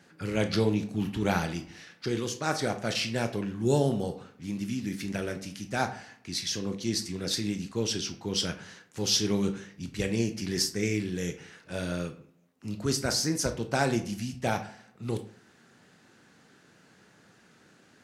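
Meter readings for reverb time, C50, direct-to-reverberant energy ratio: 0.50 s, 12.5 dB, 7.0 dB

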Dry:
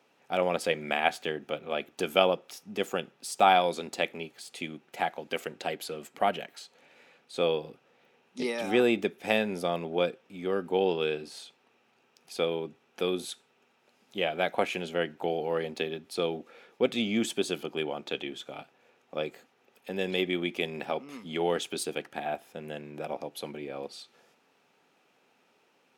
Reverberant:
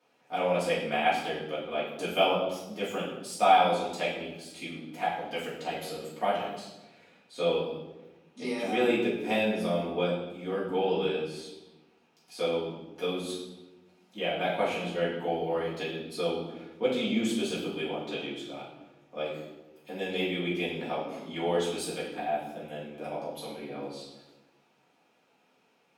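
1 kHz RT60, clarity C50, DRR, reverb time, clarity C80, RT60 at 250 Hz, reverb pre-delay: 0.90 s, 3.0 dB, −9.5 dB, 1.1 s, 6.0 dB, 1.5 s, 3 ms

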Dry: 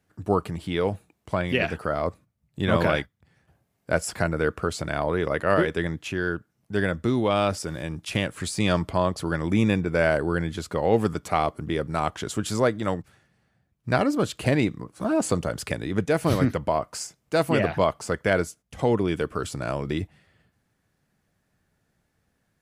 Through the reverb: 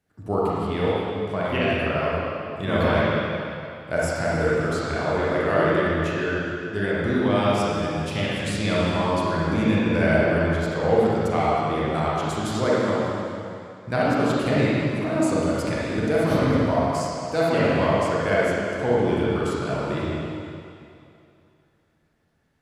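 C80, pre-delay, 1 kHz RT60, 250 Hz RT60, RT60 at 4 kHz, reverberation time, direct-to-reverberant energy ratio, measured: −2.5 dB, 32 ms, 2.7 s, 2.4 s, 2.5 s, 2.6 s, −7.0 dB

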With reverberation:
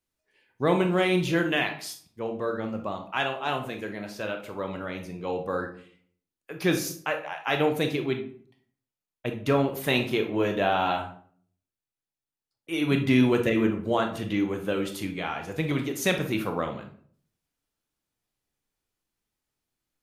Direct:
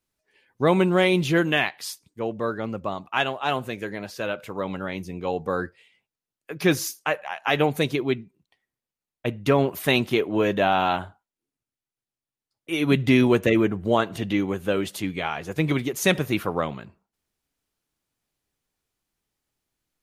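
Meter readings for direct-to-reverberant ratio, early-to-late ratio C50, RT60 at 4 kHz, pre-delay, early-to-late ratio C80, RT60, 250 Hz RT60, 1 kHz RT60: 5.0 dB, 9.0 dB, 0.35 s, 21 ms, 14.0 dB, 0.50 s, 0.65 s, 0.50 s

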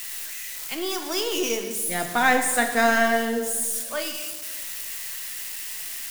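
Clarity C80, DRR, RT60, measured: 9.0 dB, 5.0 dB, 1.3 s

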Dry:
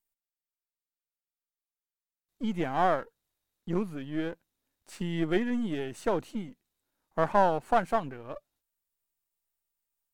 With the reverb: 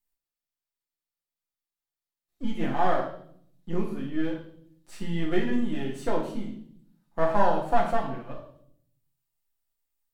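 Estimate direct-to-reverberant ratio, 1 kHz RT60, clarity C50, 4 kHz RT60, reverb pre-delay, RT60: −3.0 dB, 0.55 s, 6.0 dB, 0.60 s, 3 ms, 0.60 s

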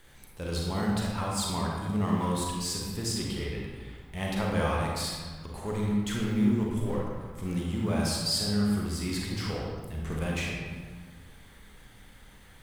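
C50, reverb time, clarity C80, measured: −1.0 dB, 1.5 s, 2.0 dB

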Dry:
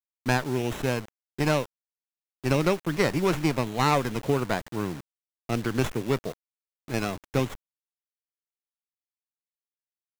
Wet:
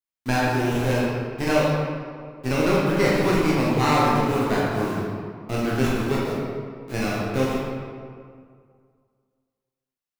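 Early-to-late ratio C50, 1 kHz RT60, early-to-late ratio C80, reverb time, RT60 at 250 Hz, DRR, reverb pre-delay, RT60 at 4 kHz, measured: −2.0 dB, 2.1 s, 0.0 dB, 2.1 s, 2.1 s, −6.5 dB, 15 ms, 1.2 s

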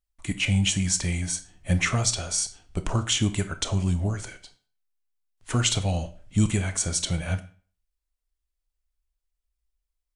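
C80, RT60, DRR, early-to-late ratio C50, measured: 19.0 dB, 0.40 s, 10.0 dB, 14.5 dB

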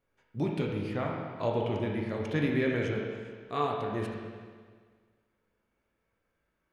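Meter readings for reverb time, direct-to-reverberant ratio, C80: 1.7 s, −1.0 dB, 3.0 dB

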